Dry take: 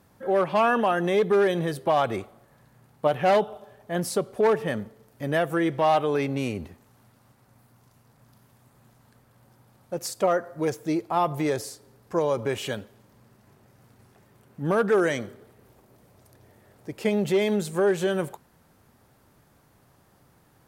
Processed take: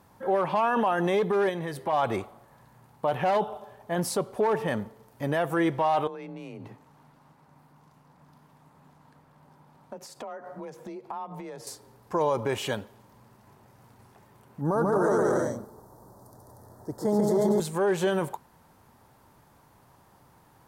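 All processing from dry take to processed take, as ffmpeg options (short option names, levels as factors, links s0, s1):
-filter_complex "[0:a]asettb=1/sr,asplit=3[s0][s1][s2];[s0]atrim=end=1.494[s3];[s1]atrim=start=1.49:end=1.93,asetpts=PTS-STARTPTS,afade=t=in:d=0.004:c=qsin,afade=t=out:st=0.436:d=0.004:c=qsin,equalizer=f=2000:t=o:w=0.37:g=7,acompressor=threshold=0.02:ratio=2:attack=3.2:release=140:knee=1:detection=peak[s4];[s2]atrim=start=1.926[s5];[s3][s4]acrossfade=d=0.004:c1=hsin:c2=qsin[s6];[s6][s5]acrossfade=d=0.004:c1=qsin:c2=hsin,asettb=1/sr,asplit=3[s7][s8][s9];[s7]atrim=end=6.074[s10];[s8]atrim=start=6.07:end=11.67,asetpts=PTS-STARTPTS,afade=t=in:d=0.004:c=qsin,afade=t=out:st=5.596:d=0.004:c=qsin,afreqshift=29,acompressor=threshold=0.0158:ratio=20:attack=3.2:release=140:knee=1:detection=peak,lowpass=f=3800:p=1[s11];[s9]atrim=start=11.666[s12];[s10][s11]acrossfade=d=0.004:c1=hsin:c2=qsin[s13];[s13][s12]acrossfade=d=0.004:c1=qsin:c2=hsin,asettb=1/sr,asplit=3[s14][s15][s16];[s14]atrim=end=14.614[s17];[s15]atrim=start=14.61:end=17.6,asetpts=PTS-STARTPTS,afade=t=in:d=0.004:c=qsin,afade=t=out:st=2.986:d=0.004:c=qsin,asuperstop=centerf=2600:order=4:qfactor=0.71,aecho=1:1:140|238|306.6|354.6|388.2:0.794|0.631|0.501|0.398|0.316,atrim=end_sample=131859[s18];[s16]atrim=start=17.596[s19];[s17][s18]acrossfade=d=0.004:c1=hsin:c2=qsin[s20];[s20][s19]acrossfade=d=0.004:c1=qsin:c2=hsin,equalizer=f=930:w=2.7:g=8.5,alimiter=limit=0.15:level=0:latency=1:release=12"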